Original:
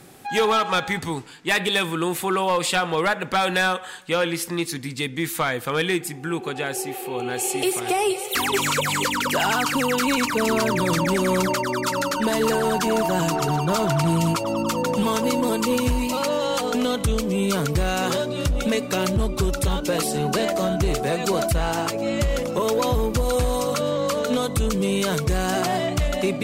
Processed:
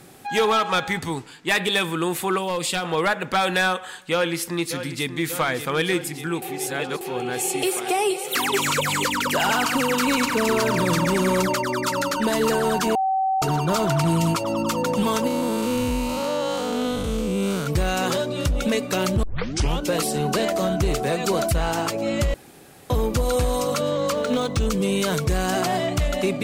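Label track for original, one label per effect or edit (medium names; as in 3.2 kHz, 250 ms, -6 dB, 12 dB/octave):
2.380000	2.850000	peaking EQ 1.1 kHz -7 dB 2.2 oct
4.110000	5.090000	echo throw 590 ms, feedback 80%, level -10.5 dB
6.420000	7.010000	reverse
7.660000	8.660000	high-pass 300 Hz -> 110 Hz
9.300000	11.410000	delay 138 ms -10 dB
12.950000	13.420000	bleep 766 Hz -18.5 dBFS
15.270000	17.670000	spectral blur width 211 ms
19.230000	19.230000	tape start 0.57 s
22.340000	22.900000	room tone
24.120000	24.660000	decimation joined by straight lines rate divided by 3×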